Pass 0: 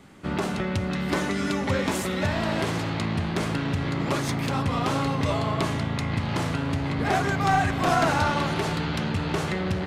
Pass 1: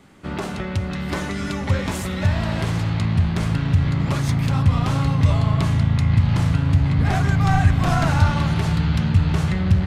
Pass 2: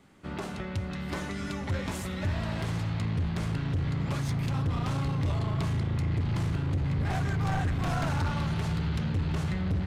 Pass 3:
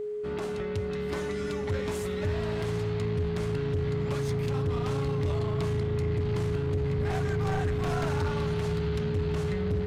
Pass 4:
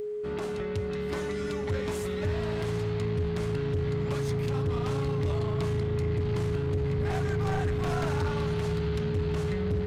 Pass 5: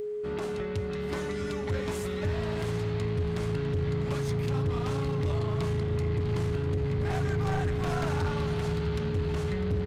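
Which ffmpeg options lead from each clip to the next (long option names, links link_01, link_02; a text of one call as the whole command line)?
ffmpeg -i in.wav -af "asubboost=boost=8:cutoff=130" out.wav
ffmpeg -i in.wav -af "asoftclip=type=hard:threshold=-16dB,volume=-8.5dB" out.wav
ffmpeg -i in.wav -af "aeval=exprs='val(0)+0.0316*sin(2*PI*420*n/s)':channel_layout=same,volume=-1dB" out.wav
ffmpeg -i in.wav -af "acompressor=mode=upward:threshold=-51dB:ratio=2.5" out.wav
ffmpeg -i in.wav -af "aecho=1:1:651:0.188" out.wav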